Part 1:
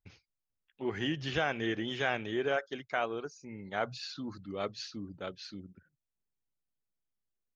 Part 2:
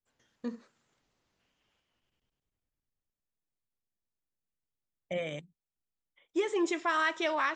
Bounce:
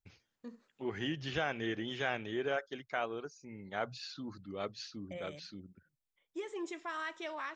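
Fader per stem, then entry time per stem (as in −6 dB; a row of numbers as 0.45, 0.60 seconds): −3.5, −11.0 decibels; 0.00, 0.00 seconds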